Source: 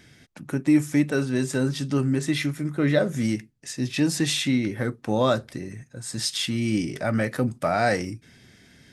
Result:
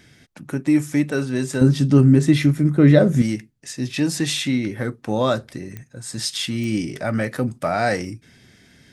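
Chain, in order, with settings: 1.61–3.22 low shelf 480 Hz +11 dB; pops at 5.77/6.64, -21 dBFS; gain +1.5 dB

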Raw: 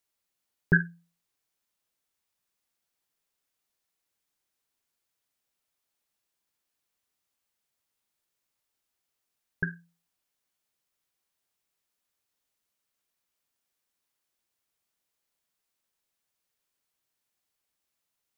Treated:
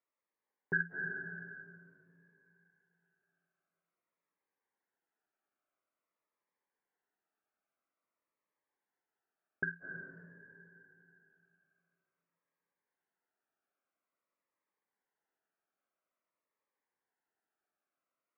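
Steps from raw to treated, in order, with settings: limiter -21.5 dBFS, peak gain reduction 12 dB; LPF 1800 Hz 24 dB/oct; on a send at -2 dB: reverb RT60 3.0 s, pre-delay 0.173 s; on the sum: dynamic EQ 1400 Hz, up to +3 dB, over -49 dBFS, Q 0.7; Bessel high-pass 380 Hz, order 2; cascading phaser falling 0.49 Hz; gain +2 dB

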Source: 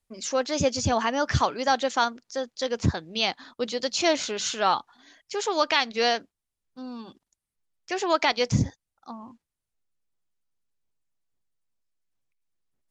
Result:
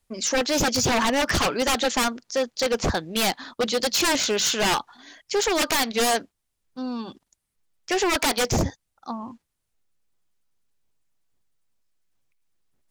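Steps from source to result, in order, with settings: wavefolder -23.5 dBFS; gain +7.5 dB

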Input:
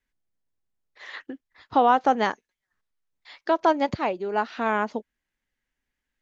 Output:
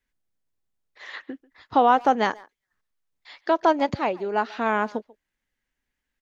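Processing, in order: speakerphone echo 0.14 s, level -21 dB; gain +1 dB

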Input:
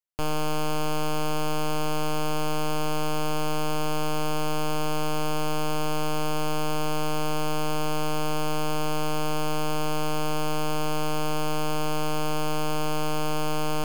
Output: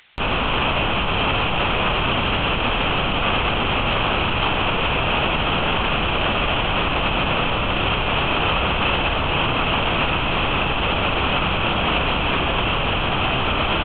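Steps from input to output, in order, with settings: LPC vocoder at 8 kHz whisper; bell 2600 Hz +14 dB 2.3 oct; doubler 30 ms -13.5 dB; upward compressor, threshold -27 dBFS

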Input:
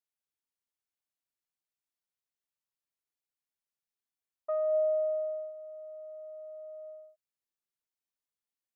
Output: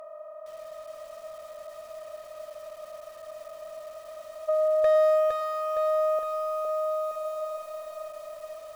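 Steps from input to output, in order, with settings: per-bin compression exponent 0.2; 4.84–6.19 small resonant body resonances 510/1100 Hz, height 15 dB, ringing for 40 ms; one-sided clip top -22.5 dBFS, bottom -19 dBFS; lo-fi delay 0.462 s, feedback 55%, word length 9-bit, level -3 dB; gain +3 dB

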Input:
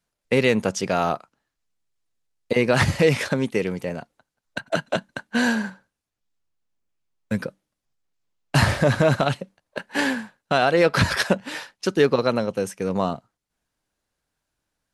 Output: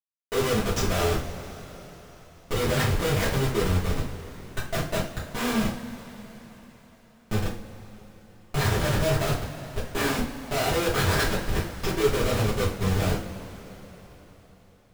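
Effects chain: 7.43–8.59 high shelf 6300 Hz -8.5 dB; Schmitt trigger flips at -24.5 dBFS; two-slope reverb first 0.33 s, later 4.5 s, from -21 dB, DRR -7.5 dB; gain -7 dB

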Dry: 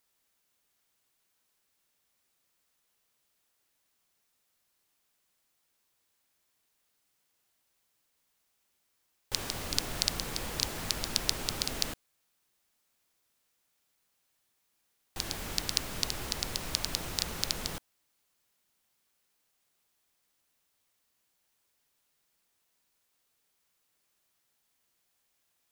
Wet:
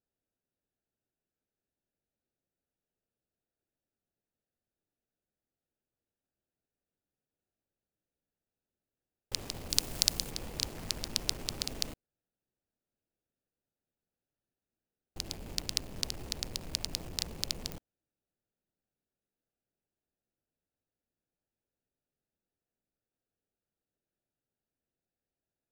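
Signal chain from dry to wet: Wiener smoothing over 41 samples; 9.7–10.31 high shelf 4800 Hz +9.5 dB; pops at 17.72, -18 dBFS; gain -2.5 dB

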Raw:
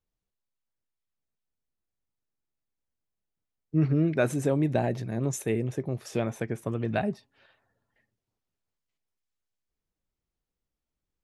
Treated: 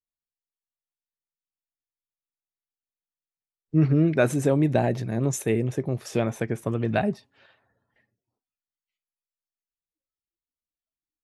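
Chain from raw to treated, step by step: spectral noise reduction 22 dB; gain +4 dB

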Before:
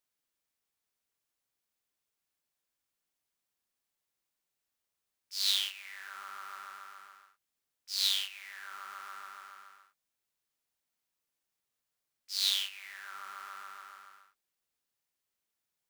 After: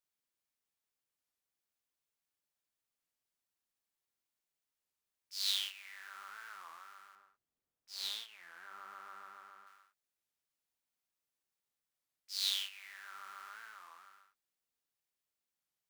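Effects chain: 7.15–9.67 tilt shelf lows +7.5 dB, about 1200 Hz; record warp 33 1/3 rpm, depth 250 cents; gain -5 dB

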